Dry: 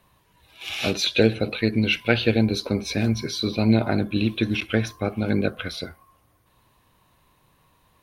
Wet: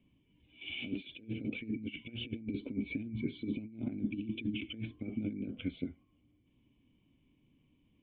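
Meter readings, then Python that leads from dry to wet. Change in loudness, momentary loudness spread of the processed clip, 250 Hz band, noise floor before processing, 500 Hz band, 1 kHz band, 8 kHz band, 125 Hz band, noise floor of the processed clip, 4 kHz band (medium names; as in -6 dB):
-16.5 dB, 5 LU, -13.5 dB, -63 dBFS, -24.0 dB, under -30 dB, under -40 dB, -18.0 dB, -72 dBFS, -18.5 dB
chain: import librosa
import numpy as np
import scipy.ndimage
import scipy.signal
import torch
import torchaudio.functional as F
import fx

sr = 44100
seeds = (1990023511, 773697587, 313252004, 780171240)

y = fx.over_compress(x, sr, threshold_db=-27.0, ratio=-0.5)
y = fx.formant_cascade(y, sr, vowel='i')
y = y * librosa.db_to_amplitude(-1.0)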